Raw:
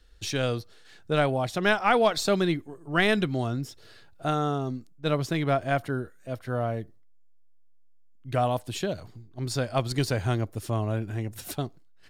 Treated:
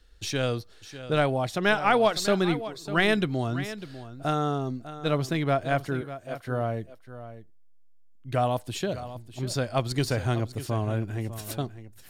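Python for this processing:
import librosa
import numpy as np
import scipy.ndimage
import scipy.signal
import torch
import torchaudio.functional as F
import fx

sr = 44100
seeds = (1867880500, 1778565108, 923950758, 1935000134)

p1 = fx.highpass(x, sr, hz=310.0, slope=12, at=(6.01, 6.47))
y = p1 + fx.echo_single(p1, sr, ms=599, db=-13.5, dry=0)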